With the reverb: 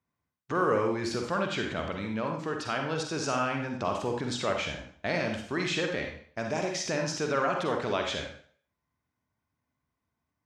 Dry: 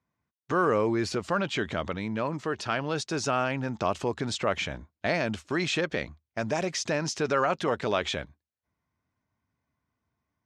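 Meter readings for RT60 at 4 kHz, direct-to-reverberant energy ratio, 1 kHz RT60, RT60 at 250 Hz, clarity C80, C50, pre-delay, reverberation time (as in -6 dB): 0.50 s, 2.5 dB, 0.50 s, 0.50 s, 8.0 dB, 4.0 dB, 40 ms, 0.55 s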